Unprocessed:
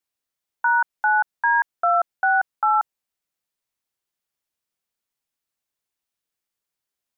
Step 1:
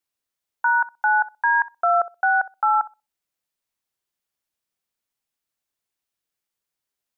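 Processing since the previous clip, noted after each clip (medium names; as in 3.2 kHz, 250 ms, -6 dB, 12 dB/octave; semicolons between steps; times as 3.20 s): filtered feedback delay 63 ms, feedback 22%, low-pass 840 Hz, level -14.5 dB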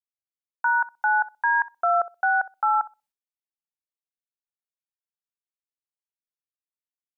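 expander -53 dBFS; trim -2.5 dB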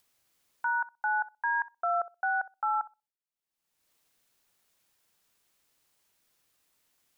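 upward compressor, threshold -40 dBFS; trim -7.5 dB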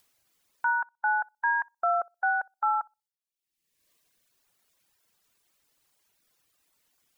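reverb removal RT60 1.4 s; trim +4 dB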